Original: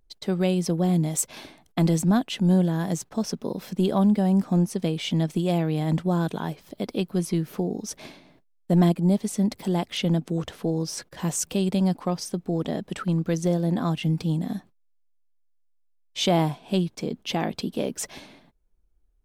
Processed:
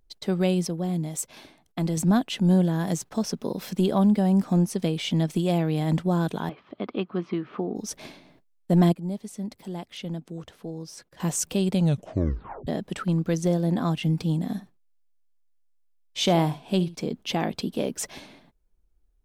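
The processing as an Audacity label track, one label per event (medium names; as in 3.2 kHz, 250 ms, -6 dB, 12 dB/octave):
0.670000	1.970000	gain -5.5 dB
2.870000	5.990000	tape noise reduction on one side only encoder only
6.490000	7.760000	cabinet simulation 120–3100 Hz, peaks and dips at 160 Hz -10 dB, 510 Hz -4 dB, 1.2 kHz +10 dB
8.930000	11.200000	gain -10 dB
11.740000	11.740000	tape stop 0.93 s
14.480000	16.980000	delay 71 ms -16.5 dB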